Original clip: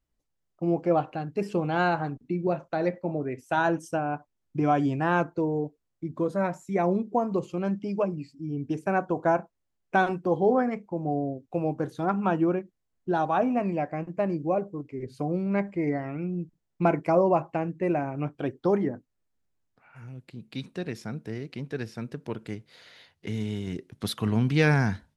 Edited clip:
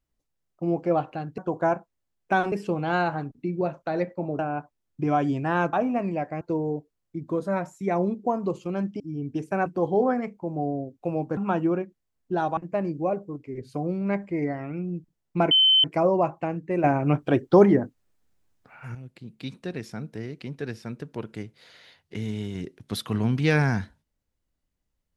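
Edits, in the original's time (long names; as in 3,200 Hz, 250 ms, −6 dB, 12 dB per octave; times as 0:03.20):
0:03.25–0:03.95: remove
0:07.88–0:08.35: remove
0:09.01–0:10.15: move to 0:01.38
0:11.86–0:12.14: remove
0:13.34–0:14.02: move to 0:05.29
0:16.96: insert tone 3,070 Hz −14.5 dBFS 0.33 s
0:17.96–0:20.07: clip gain +8.5 dB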